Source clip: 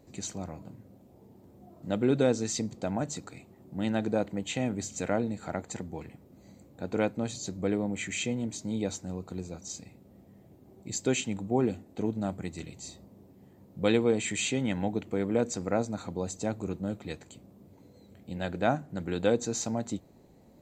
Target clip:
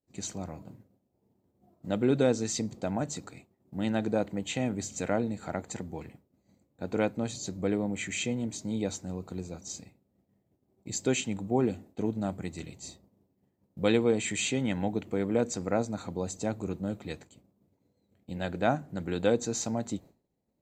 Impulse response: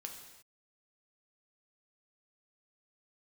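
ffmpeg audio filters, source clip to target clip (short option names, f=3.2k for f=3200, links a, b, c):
-af "agate=range=-33dB:threshold=-43dB:ratio=3:detection=peak"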